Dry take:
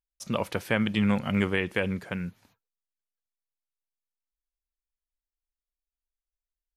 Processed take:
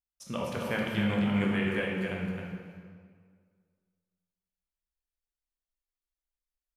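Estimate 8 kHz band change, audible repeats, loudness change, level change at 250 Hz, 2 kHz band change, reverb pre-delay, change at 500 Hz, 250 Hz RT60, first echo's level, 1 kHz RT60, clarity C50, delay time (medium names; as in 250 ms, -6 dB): no reading, 1, -3.0 dB, -2.0 dB, -3.0 dB, 12 ms, -2.5 dB, 1.9 s, -5.5 dB, 1.9 s, -1.0 dB, 264 ms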